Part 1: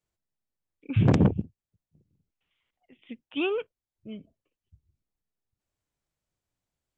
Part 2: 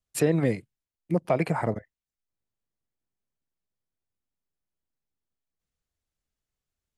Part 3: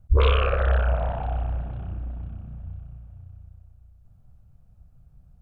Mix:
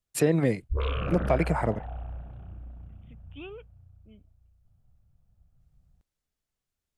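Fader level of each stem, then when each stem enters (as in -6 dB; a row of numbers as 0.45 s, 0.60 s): -15.0 dB, 0.0 dB, -10.5 dB; 0.00 s, 0.00 s, 0.60 s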